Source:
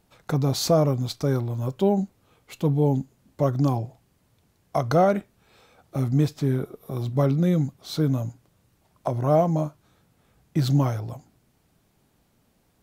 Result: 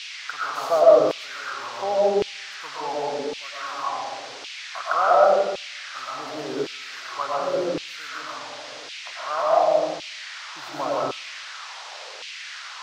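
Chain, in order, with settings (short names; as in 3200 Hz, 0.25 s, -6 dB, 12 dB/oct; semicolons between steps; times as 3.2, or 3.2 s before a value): resonant high shelf 1900 Hz -10.5 dB, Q 3; digital reverb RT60 1.2 s, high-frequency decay 0.45×, pre-delay 75 ms, DRR -4 dB; band noise 440–5500 Hz -35 dBFS; in parallel at -7.5 dB: soft clip -11 dBFS, distortion -14 dB; on the sum: LFO high-pass saw down 0.9 Hz 400–2800 Hz; gain -8 dB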